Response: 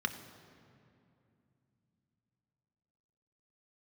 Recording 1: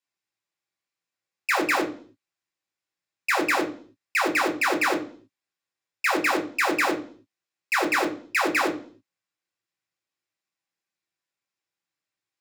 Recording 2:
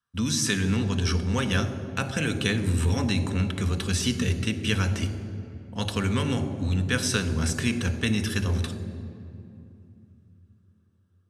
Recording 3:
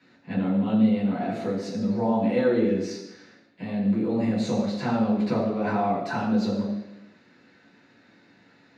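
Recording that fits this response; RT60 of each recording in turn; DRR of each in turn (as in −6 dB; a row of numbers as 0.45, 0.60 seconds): 2; 0.45, 2.6, 0.95 seconds; −0.5, 7.0, −8.0 decibels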